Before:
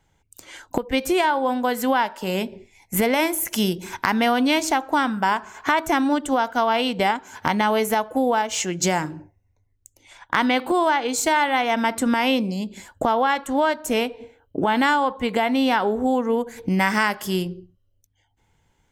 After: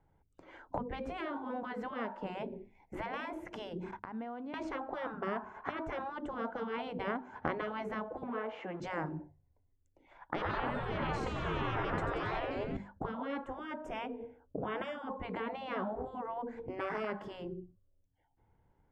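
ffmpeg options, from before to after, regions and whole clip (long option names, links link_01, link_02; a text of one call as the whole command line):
ffmpeg -i in.wav -filter_complex "[0:a]asettb=1/sr,asplit=3[link_01][link_02][link_03];[link_01]atrim=end=3.914[link_04];[link_02]atrim=start=3.91:end=4.54,asetpts=PTS-STARTPTS,afade=type=in:duration=0.004:curve=qsin,afade=type=out:start_time=0.626:duration=0.004:curve=qsin,agate=range=-21dB:threshold=-39dB:ratio=16:release=100:detection=peak,acompressor=threshold=-32dB:ratio=16:attack=3.2:release=140:knee=1:detection=peak[link_05];[link_03]atrim=start=4.536[link_06];[link_04][link_05]acrossfade=duration=0.004:curve1=hsin:curve2=qsin[link_07];[link_07][link_06]acrossfade=duration=0.004:curve1=qsin:curve2=hsin,asettb=1/sr,asplit=3[link_08][link_09][link_10];[link_08]atrim=end=8.234[link_11];[link_09]atrim=start=8.23:end=8.8,asetpts=PTS-STARTPTS,afade=type=in:duration=0.004:curve=qsin,afade=type=out:start_time=0.566:duration=0.004:curve=qsin,aeval=exprs='val(0)+0.5*0.0237*sgn(val(0))':channel_layout=same,acrossover=split=290 3200:gain=0.1 1 0.0891[link_12][link_13][link_14];[link_12][link_13][link_14]amix=inputs=3:normalize=0[link_15];[link_10]atrim=start=8.796[link_16];[link_11][link_15]acrossfade=duration=0.004:curve1=hsin:curve2=qsin[link_17];[link_17][link_16]acrossfade=duration=0.004:curve1=qsin:curve2=hsin,asettb=1/sr,asplit=3[link_18][link_19][link_20];[link_18]atrim=end=10.354[link_21];[link_19]atrim=start=10.35:end=12.77,asetpts=PTS-STARTPTS,afade=type=in:duration=0.004:curve=qsin,afade=type=out:start_time=2.416:duration=0.004:curve=qsin,asplit=9[link_22][link_23][link_24][link_25][link_26][link_27][link_28][link_29][link_30];[link_23]adelay=90,afreqshift=-130,volume=-9dB[link_31];[link_24]adelay=180,afreqshift=-260,volume=-13.3dB[link_32];[link_25]adelay=270,afreqshift=-390,volume=-17.6dB[link_33];[link_26]adelay=360,afreqshift=-520,volume=-21.9dB[link_34];[link_27]adelay=450,afreqshift=-650,volume=-26.2dB[link_35];[link_28]adelay=540,afreqshift=-780,volume=-30.5dB[link_36];[link_29]adelay=630,afreqshift=-910,volume=-34.8dB[link_37];[link_30]adelay=720,afreqshift=-1040,volume=-39.1dB[link_38];[link_22][link_31][link_32][link_33][link_34][link_35][link_36][link_37][link_38]amix=inputs=9:normalize=0,atrim=end_sample=106722,acontrast=76[link_39];[link_20]atrim=start=12.766[link_40];[link_21][link_39]acrossfade=duration=0.004:curve1=hsin:curve2=qsin[link_41];[link_41][link_40]acrossfade=duration=0.004:curve1=qsin:curve2=hsin,asettb=1/sr,asplit=3[link_42][link_43][link_44];[link_42]atrim=end=13.484[link_45];[link_43]atrim=start=13.48:end=15.1,asetpts=PTS-STARTPTS,afade=type=in:duration=0.004:curve=qsin,afade=type=out:start_time=1.616:duration=0.004:curve=qsin,asuperstop=centerf=4200:order=8:qfactor=4.3,highshelf=frequency=5900:gain=7[link_46];[link_44]atrim=start=15.096[link_47];[link_45][link_46]acrossfade=duration=0.004:curve1=hsin:curve2=qsin[link_48];[link_48][link_47]acrossfade=duration=0.004:curve1=qsin:curve2=hsin,bandreject=frequency=50:width_type=h:width=6,bandreject=frequency=100:width_type=h:width=6,bandreject=frequency=150:width_type=h:width=6,bandreject=frequency=200:width_type=h:width=6,bandreject=frequency=250:width_type=h:width=6,afftfilt=real='re*lt(hypot(re,im),0.282)':imag='im*lt(hypot(re,im),0.282)':win_size=1024:overlap=0.75,lowpass=1100,volume=-4dB" out.wav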